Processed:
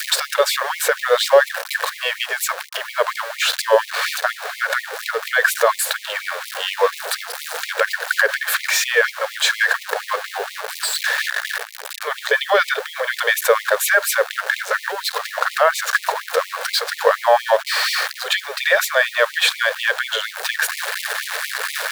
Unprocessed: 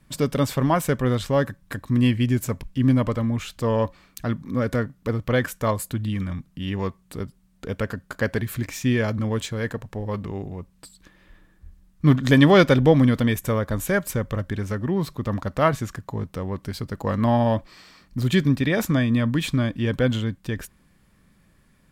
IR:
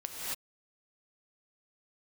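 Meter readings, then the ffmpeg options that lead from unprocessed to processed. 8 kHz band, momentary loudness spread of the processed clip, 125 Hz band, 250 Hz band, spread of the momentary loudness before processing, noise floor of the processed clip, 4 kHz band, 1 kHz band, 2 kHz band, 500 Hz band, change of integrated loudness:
+13.5 dB, 9 LU, under -40 dB, under -30 dB, 13 LU, -37 dBFS, +13.0 dB, +8.0 dB, +13.5 dB, +4.5 dB, +3.5 dB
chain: -filter_complex "[0:a]aeval=exprs='val(0)+0.5*0.0299*sgn(val(0))':c=same,asplit=2[a][b];[b]acompressor=threshold=-27dB:ratio=6,volume=3dB[c];[a][c]amix=inputs=2:normalize=0,equalizer=f=400:t=o:w=0.67:g=7,equalizer=f=1.6k:t=o:w=0.67:g=11,equalizer=f=4k:t=o:w=0.67:g=6,alimiter=limit=-7dB:level=0:latency=1:release=75,acompressor=mode=upward:threshold=-21dB:ratio=2.5,highpass=f=95:p=1,bandreject=f=2k:w=24,adynamicequalizer=threshold=0.0316:dfrequency=580:dqfactor=0.85:tfrequency=580:tqfactor=0.85:attack=5:release=100:ratio=0.375:range=2.5:mode=boostabove:tftype=bell,acrusher=bits=6:mix=0:aa=0.000001,afftfilt=real='re*gte(b*sr/1024,420*pow(2000/420,0.5+0.5*sin(2*PI*4.2*pts/sr)))':imag='im*gte(b*sr/1024,420*pow(2000/420,0.5+0.5*sin(2*PI*4.2*pts/sr)))':win_size=1024:overlap=0.75,volume=2.5dB"

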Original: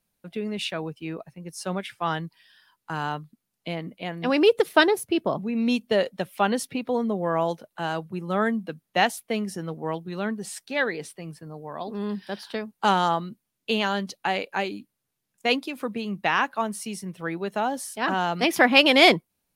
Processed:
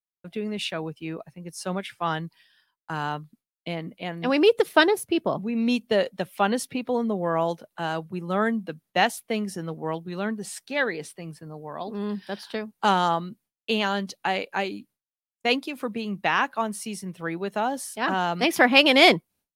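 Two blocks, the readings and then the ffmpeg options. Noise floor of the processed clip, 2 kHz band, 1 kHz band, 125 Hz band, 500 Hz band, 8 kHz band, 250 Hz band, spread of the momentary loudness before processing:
under -85 dBFS, 0.0 dB, 0.0 dB, 0.0 dB, 0.0 dB, 0.0 dB, 0.0 dB, 15 LU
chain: -af "agate=range=-33dB:threshold=-51dB:ratio=3:detection=peak"

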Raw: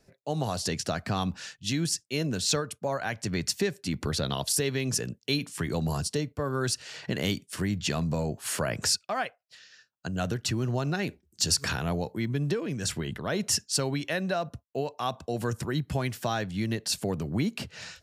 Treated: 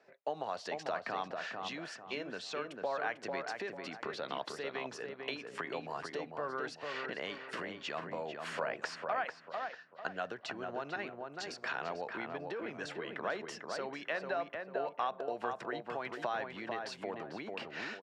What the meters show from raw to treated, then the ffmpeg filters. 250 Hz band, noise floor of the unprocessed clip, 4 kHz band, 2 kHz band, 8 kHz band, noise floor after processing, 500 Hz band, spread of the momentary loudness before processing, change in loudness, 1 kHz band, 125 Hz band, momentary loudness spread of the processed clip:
-15.5 dB, -72 dBFS, -14.0 dB, -4.0 dB, -24.5 dB, -56 dBFS, -6.0 dB, 6 LU, -10.0 dB, -2.5 dB, -24.5 dB, 5 LU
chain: -filter_complex "[0:a]acompressor=threshold=-35dB:ratio=6,highpass=560,lowpass=2.2k,asplit=2[a][b];[b]adelay=446,lowpass=f=1.7k:p=1,volume=-3.5dB,asplit=2[c][d];[d]adelay=446,lowpass=f=1.7k:p=1,volume=0.38,asplit=2[e][f];[f]adelay=446,lowpass=f=1.7k:p=1,volume=0.38,asplit=2[g][h];[h]adelay=446,lowpass=f=1.7k:p=1,volume=0.38,asplit=2[i][j];[j]adelay=446,lowpass=f=1.7k:p=1,volume=0.38[k];[a][c][e][g][i][k]amix=inputs=6:normalize=0,volume=5.5dB"

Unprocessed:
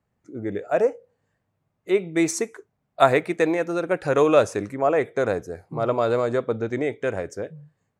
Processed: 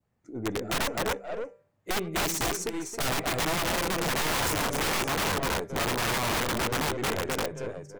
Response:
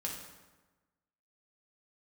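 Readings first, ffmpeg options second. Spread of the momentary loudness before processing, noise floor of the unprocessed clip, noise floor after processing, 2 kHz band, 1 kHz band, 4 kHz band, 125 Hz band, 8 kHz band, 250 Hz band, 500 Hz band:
13 LU, -76 dBFS, -70 dBFS, +1.0 dB, -3.0 dB, +9.0 dB, -1.5 dB, +5.5 dB, -6.5 dB, -11.0 dB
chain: -filter_complex "[0:a]adynamicequalizer=threshold=0.0126:dfrequency=1600:dqfactor=1.3:tfrequency=1600:tqfactor=1.3:attack=5:release=100:ratio=0.375:range=3:mode=cutabove:tftype=bell,aeval=exprs='(tanh(11.2*val(0)+0.4)-tanh(0.4))/11.2':c=same,bandreject=f=196.4:t=h:w=4,bandreject=f=392.8:t=h:w=4,bandreject=f=589.2:t=h:w=4,bandreject=f=785.6:t=h:w=4,bandreject=f=982:t=h:w=4,bandreject=f=1.1784k:t=h:w=4,bandreject=f=1.3748k:t=h:w=4,bandreject=f=1.5712k:t=h:w=4,bandreject=f=1.7676k:t=h:w=4,bandreject=f=1.964k:t=h:w=4,bandreject=f=2.1604k:t=h:w=4,bandreject=f=2.3568k:t=h:w=4,bandreject=f=2.5532k:t=h:w=4,asplit=2[a][b];[b]aecho=0:1:102|254|525|571:0.15|0.631|0.168|0.335[c];[a][c]amix=inputs=2:normalize=0,aeval=exprs='(mod(13.3*val(0)+1,2)-1)/13.3':c=same"

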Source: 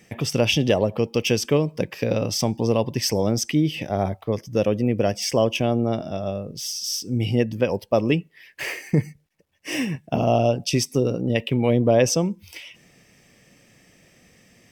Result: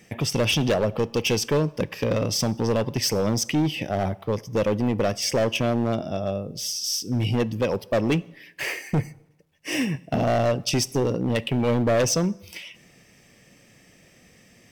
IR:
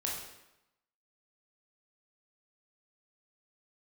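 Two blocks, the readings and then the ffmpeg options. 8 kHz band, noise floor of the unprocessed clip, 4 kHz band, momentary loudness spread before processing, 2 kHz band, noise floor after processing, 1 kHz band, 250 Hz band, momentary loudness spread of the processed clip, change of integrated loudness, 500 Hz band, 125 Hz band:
+0.5 dB, -57 dBFS, 0.0 dB, 9 LU, 0.0 dB, -56 dBFS, -1.0 dB, -2.0 dB, 7 LU, -1.5 dB, -2.5 dB, -1.5 dB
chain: -filter_complex "[0:a]asoftclip=type=hard:threshold=-18dB,asplit=2[a][b];[1:a]atrim=start_sample=2205[c];[b][c]afir=irnorm=-1:irlink=0,volume=-21.5dB[d];[a][d]amix=inputs=2:normalize=0"

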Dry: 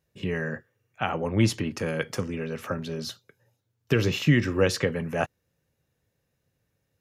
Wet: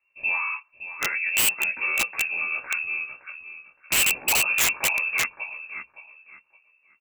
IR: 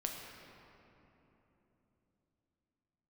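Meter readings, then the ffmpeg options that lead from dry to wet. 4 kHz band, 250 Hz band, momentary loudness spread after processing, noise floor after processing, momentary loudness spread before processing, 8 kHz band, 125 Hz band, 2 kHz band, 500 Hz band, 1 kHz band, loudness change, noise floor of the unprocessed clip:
+7.0 dB, -19.5 dB, 17 LU, -67 dBFS, 12 LU, +15.0 dB, -23.0 dB, +10.0 dB, -14.0 dB, +1.5 dB, +4.5 dB, -77 dBFS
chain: -filter_complex "[0:a]lowshelf=f=83:g=10.5,asplit=2[a][b];[b]aecho=0:1:566|1132|1698:0.251|0.0628|0.0157[c];[a][c]amix=inputs=2:normalize=0,lowpass=f=2.4k:t=q:w=0.5098,lowpass=f=2.4k:t=q:w=0.6013,lowpass=f=2.4k:t=q:w=0.9,lowpass=f=2.4k:t=q:w=2.563,afreqshift=-2800,asplit=2[d][e];[e]adelay=16,volume=-2dB[f];[d][f]amix=inputs=2:normalize=0,acrossover=split=190[g][h];[g]acompressor=threshold=-59dB:ratio=6[i];[h]aeval=exprs='(mod(4.73*val(0)+1,2)-1)/4.73':c=same[j];[i][j]amix=inputs=2:normalize=0,volume=-1.5dB"

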